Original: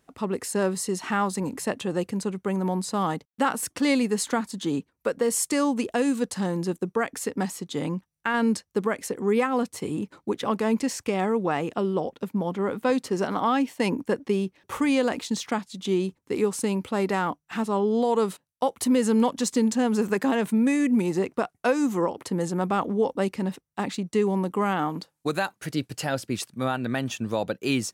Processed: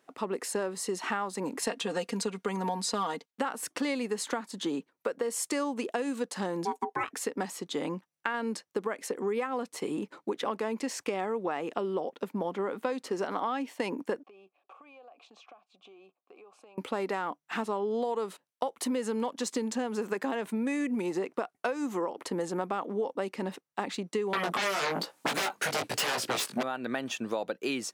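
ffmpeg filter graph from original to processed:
-filter_complex "[0:a]asettb=1/sr,asplit=3[a][b][c];[a]atrim=end=1.624[d];[b]atrim=start=1.62:end=3.31,asetpts=PTS-STARTPTS,afade=t=in:d=0.004:c=qsin,afade=t=out:st=1.686:d=0.004:c=qsin,equalizer=f=4.8k:w=0.56:g=7,aecho=1:1:4.3:0.7,atrim=end_sample=74529[e];[c]atrim=start=3.306[f];[d][e]acrossfade=d=0.004:c1=hsin:c2=qsin[g];[g][f]acrossfade=d=0.004:c1=qsin:c2=hsin,asettb=1/sr,asplit=3[h][i][j];[h]atrim=end=6.654[k];[i]atrim=start=6.65:end=7.11,asetpts=PTS-STARTPTS,afade=t=in:d=0.004:c=qsin,afade=t=out:st=0.456:d=0.004:c=qsin,aecho=1:1:5.7:0.6,atrim=end_sample=20286,aeval=exprs='val(0)*sin(2*PI*600*n/s)':c=same[l];[j]atrim=start=7.106[m];[k][l]acrossfade=d=0.004:c1=hsin:c2=qsin[n];[n][m]acrossfade=d=0.004:c1=qsin:c2=hsin,asettb=1/sr,asplit=3[o][p][q];[o]atrim=end=14.234[r];[p]atrim=start=14.23:end=16.78,asetpts=PTS-STARTPTS,afade=t=in:d=0.004:c=qsin,afade=t=out:st=2.546:d=0.004:c=qsin,asplit=3[s][t][u];[s]bandpass=f=730:t=q:w=8,volume=0dB[v];[t]bandpass=f=1.09k:t=q:w=8,volume=-6dB[w];[u]bandpass=f=2.44k:t=q:w=8,volume=-9dB[x];[v][w][x]amix=inputs=3:normalize=0,acompressor=threshold=-50dB:ratio=16:attack=3.2:release=140:knee=1:detection=peak[y];[q]atrim=start=16.776[z];[r][y]acrossfade=d=0.004:c1=hsin:c2=qsin[aa];[aa][z]acrossfade=d=0.004:c1=qsin:c2=hsin,asettb=1/sr,asplit=3[ab][ac][ad];[ab]atrim=end=24.334[ae];[ac]atrim=start=24.33:end=26.63,asetpts=PTS-STARTPTS,afade=t=in:d=0.004:c=qsin,afade=t=out:st=2.296:d=0.004:c=qsin,aeval=exprs='0.224*sin(PI/2*7.94*val(0)/0.224)':c=same,bandreject=f=320:w=8.4,flanger=delay=16:depth=4.4:speed=1.1[af];[ad]atrim=start=26.626[ag];[ae][af]acrossfade=d=0.004:c1=hsin:c2=qsin[ah];[ah][ag]acrossfade=d=0.004:c1=qsin:c2=hsin,highpass=320,highshelf=f=5.1k:g=-7,acompressor=threshold=-30dB:ratio=6,volume=2dB"

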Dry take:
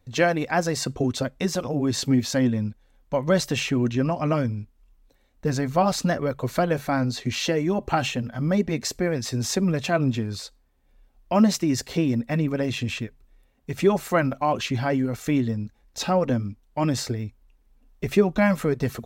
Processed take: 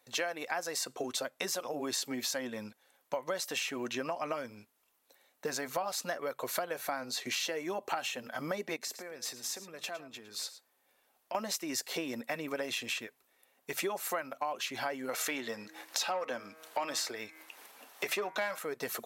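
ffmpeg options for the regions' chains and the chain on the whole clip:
-filter_complex "[0:a]asettb=1/sr,asplit=3[a][b][c];[a]atrim=end=8.764[d];[b]atrim=start=8.76:end=11.35,asetpts=PTS-STARTPTS,afade=t=in:d=0.004:c=qsin,afade=t=out:st=2.586:d=0.004:c=qsin,acompressor=threshold=-37dB:ratio=8:attack=3.2:release=140:knee=1:detection=peak,aecho=1:1:109:0.188,atrim=end_sample=114219[e];[c]atrim=start=11.346[f];[d][e]acrossfade=d=0.004:c1=hsin:c2=qsin[g];[g][f]acrossfade=d=0.004:c1=qsin:c2=hsin,asettb=1/sr,asplit=3[h][i][j];[h]atrim=end=15.094[k];[i]atrim=start=15.09:end=18.59,asetpts=PTS-STARTPTS,afade=t=in:d=0.004:c=qsin,afade=t=out:st=3.496:d=0.004:c=qsin,bandreject=f=158.7:t=h:w=4,bandreject=f=317.4:t=h:w=4,bandreject=f=476.1:t=h:w=4,bandreject=f=634.8:t=h:w=4,bandreject=f=793.5:t=h:w=4,bandreject=f=952.2:t=h:w=4,bandreject=f=1.1109k:t=h:w=4,bandreject=f=1.2696k:t=h:w=4,bandreject=f=1.4283k:t=h:w=4,bandreject=f=1.587k:t=h:w=4,bandreject=f=1.7457k:t=h:w=4,bandreject=f=1.9044k:t=h:w=4,bandreject=f=2.0631k:t=h:w=4,bandreject=f=2.2218k:t=h:w=4,bandreject=f=2.3805k:t=h:w=4,bandreject=f=2.5392k:t=h:w=4,acompressor=mode=upward:threshold=-31dB:ratio=2.5:attack=3.2:release=140:knee=2.83:detection=peak,asplit=2[l][m];[m]highpass=f=720:p=1,volume=14dB,asoftclip=type=tanh:threshold=-7dB[n];[l][n]amix=inputs=2:normalize=0,lowpass=f=4.8k:p=1,volume=-6dB[o];[j]atrim=start=18.586[p];[k][o]acrossfade=d=0.004:c1=hsin:c2=qsin[q];[q][p]acrossfade=d=0.004:c1=qsin:c2=hsin,highpass=580,equalizer=f=12k:t=o:w=0.79:g=9.5,acompressor=threshold=-35dB:ratio=6,volume=2.5dB"

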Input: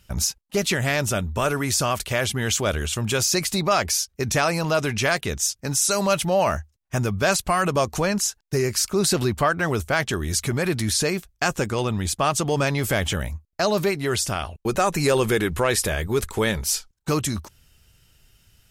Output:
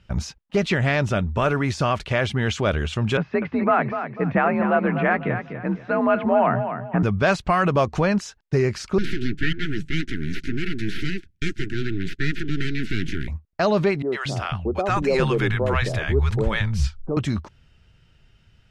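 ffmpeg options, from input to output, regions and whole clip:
-filter_complex "[0:a]asettb=1/sr,asplit=3[a][b][c];[a]atrim=end=3.174[d];[b]atrim=start=3.17:end=7.03,asetpts=PTS-STARTPTS,afade=t=in:d=0.004:c=qsin,afade=t=out:st=3.856:d=0.004:c=qsin,lowpass=f=2.1k:w=0.5412,lowpass=f=2.1k:w=1.3066,aecho=1:1:247|494|741|988:0.355|0.114|0.0363|0.0116,atrim=end_sample=170226,afreqshift=50[e];[c]atrim=start=7.026[f];[d][e]acrossfade=d=0.004:c1=hsin:c2=qsin[g];[g][f]acrossfade=d=0.004:c1=qsin:c2=hsin,asettb=1/sr,asplit=3[h][i][j];[h]atrim=end=8.984[k];[i]atrim=start=8.98:end=13.28,asetpts=PTS-STARTPTS,afade=t=in:d=0.004:c=qsin,afade=t=out:st=4.296:d=0.004:c=qsin,aeval=exprs='abs(val(0))':c=same,asuperstop=centerf=760:order=20:qfactor=0.75[l];[j]atrim=start=13.276[m];[k][l]acrossfade=d=0.004:c1=hsin:c2=qsin[n];[n][m]acrossfade=d=0.004:c1=qsin:c2=hsin,asettb=1/sr,asplit=3[o][p][q];[o]atrim=end=14.024[r];[p]atrim=start=14.02:end=17.17,asetpts=PTS-STARTPTS,afade=t=in:d=0.004:c=qsin,afade=t=out:st=3.146:d=0.004:c=qsin,asubboost=boost=5:cutoff=110,acrossover=split=200|740[s][t][u];[u]adelay=100[v];[s]adelay=230[w];[w][t][v]amix=inputs=3:normalize=0,atrim=end_sample=138915[x];[q]atrim=start=17.166[y];[r][x]acrossfade=d=0.004:c1=hsin:c2=qsin[z];[z][y]acrossfade=d=0.004:c1=qsin:c2=hsin,deesser=0.35,lowpass=3k,equalizer=f=160:w=1.2:g=3,volume=1.5dB"

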